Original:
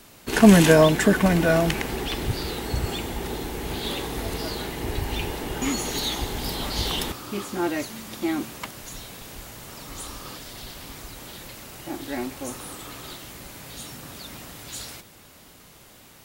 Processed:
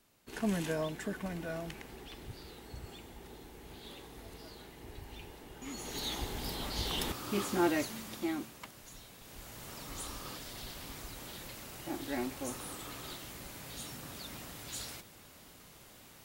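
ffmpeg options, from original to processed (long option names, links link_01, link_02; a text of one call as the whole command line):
ffmpeg -i in.wav -af "volume=5.5dB,afade=type=in:start_time=5.64:duration=0.5:silence=0.298538,afade=type=in:start_time=6.89:duration=0.57:silence=0.421697,afade=type=out:start_time=7.46:duration=1.07:silence=0.266073,afade=type=in:start_time=9.19:duration=0.48:silence=0.421697" out.wav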